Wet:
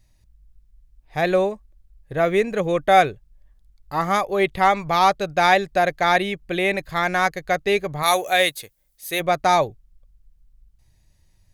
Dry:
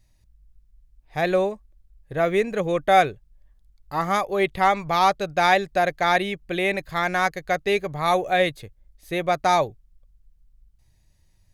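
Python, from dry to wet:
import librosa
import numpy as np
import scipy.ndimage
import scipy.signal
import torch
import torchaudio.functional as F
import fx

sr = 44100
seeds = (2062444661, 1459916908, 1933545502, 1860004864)

y = fx.riaa(x, sr, side='recording', at=(8.02, 9.19), fade=0.02)
y = F.gain(torch.from_numpy(y), 2.0).numpy()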